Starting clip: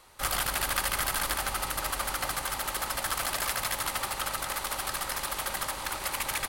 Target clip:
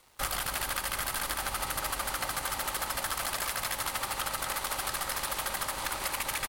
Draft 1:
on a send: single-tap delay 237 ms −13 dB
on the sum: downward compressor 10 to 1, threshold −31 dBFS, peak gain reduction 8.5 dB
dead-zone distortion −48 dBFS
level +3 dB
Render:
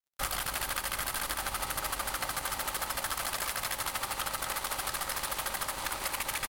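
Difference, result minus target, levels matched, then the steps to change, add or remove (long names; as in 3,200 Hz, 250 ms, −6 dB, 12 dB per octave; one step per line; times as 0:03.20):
dead-zone distortion: distortion +9 dB
change: dead-zone distortion −57 dBFS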